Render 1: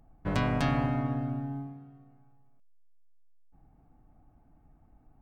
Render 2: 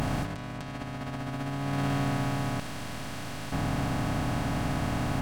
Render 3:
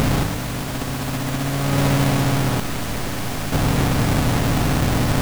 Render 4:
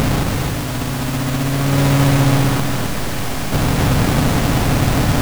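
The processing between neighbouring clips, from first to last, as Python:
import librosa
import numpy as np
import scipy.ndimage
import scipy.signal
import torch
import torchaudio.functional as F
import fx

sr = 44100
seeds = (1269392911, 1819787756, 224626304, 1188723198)

y1 = fx.bin_compress(x, sr, power=0.2)
y1 = fx.high_shelf(y1, sr, hz=7300.0, db=6.5)
y1 = fx.over_compress(y1, sr, threshold_db=-29.0, ratio=-0.5)
y2 = fx.halfwave_hold(y1, sr)
y2 = fx.dmg_noise_colour(y2, sr, seeds[0], colour='pink', level_db=-37.0)
y2 = y2 * librosa.db_to_amplitude(5.5)
y3 = y2 + 10.0 ** (-4.5 / 20.0) * np.pad(y2, (int(267 * sr / 1000.0), 0))[:len(y2)]
y3 = y3 * librosa.db_to_amplitude(2.0)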